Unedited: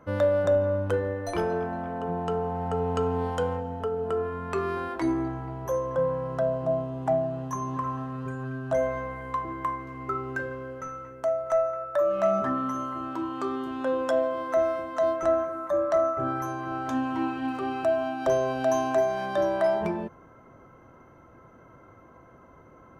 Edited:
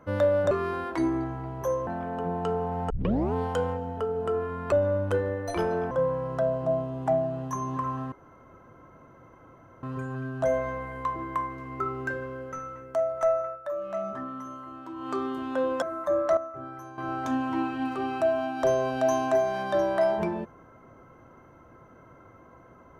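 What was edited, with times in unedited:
0:00.51–0:01.70: swap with 0:04.55–0:05.91
0:02.73: tape start 0.43 s
0:08.12: splice in room tone 1.71 s
0:11.75–0:13.38: duck −8.5 dB, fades 0.14 s
0:14.11–0:15.45: remove
0:16.00–0:16.61: clip gain −11 dB

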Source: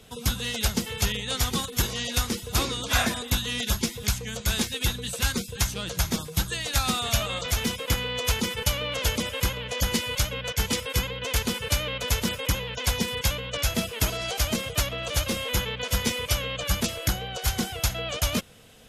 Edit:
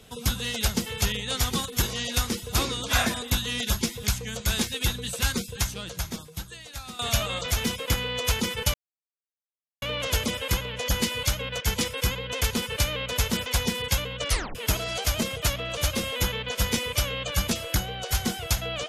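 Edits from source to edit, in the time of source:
0:05.45–0:06.99: fade out quadratic, to −14.5 dB
0:08.74: splice in silence 1.08 s
0:12.38–0:12.79: remove
0:13.62: tape stop 0.26 s

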